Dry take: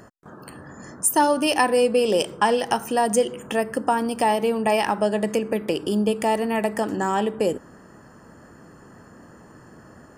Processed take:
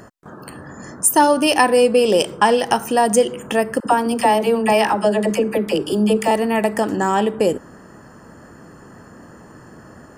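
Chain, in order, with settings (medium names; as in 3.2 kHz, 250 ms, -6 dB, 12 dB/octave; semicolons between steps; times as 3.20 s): 3.80–6.31 s: phase dispersion lows, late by 58 ms, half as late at 530 Hz; trim +5 dB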